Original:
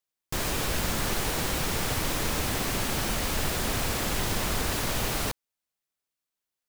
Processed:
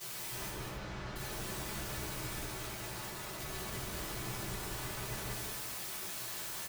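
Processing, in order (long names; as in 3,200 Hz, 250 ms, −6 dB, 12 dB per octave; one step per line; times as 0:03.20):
sign of each sample alone
0:02.43–0:03.40: high-pass filter 510 Hz 12 dB per octave
downward expander −19 dBFS
brickwall limiter −47.5 dBFS, peak gain reduction 8.5 dB
wrap-around overflow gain 52 dB
0:00.49–0:01.16: high-frequency loss of the air 160 metres
loudspeakers that aren't time-aligned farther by 65 metres −6 dB, 91 metres −12 dB
convolution reverb RT60 0.75 s, pre-delay 4 ms, DRR −7 dB
level +6.5 dB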